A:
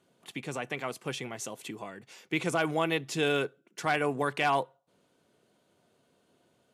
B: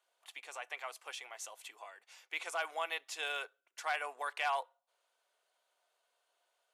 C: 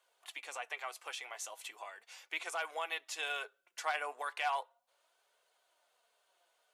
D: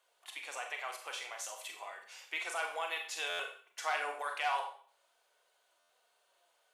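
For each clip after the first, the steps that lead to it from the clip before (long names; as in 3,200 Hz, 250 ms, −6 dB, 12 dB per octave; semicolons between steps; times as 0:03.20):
high-pass filter 670 Hz 24 dB per octave; level −6 dB
in parallel at +3 dB: downward compressor, threshold −46 dBFS, peak gain reduction 15 dB; on the sum: flanger 0.37 Hz, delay 1.8 ms, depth 5.2 ms, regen +62%; level +1 dB
four-comb reverb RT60 0.47 s, combs from 30 ms, DRR 3 dB; buffer that repeats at 0:03.29/0:05.79, samples 512, times 8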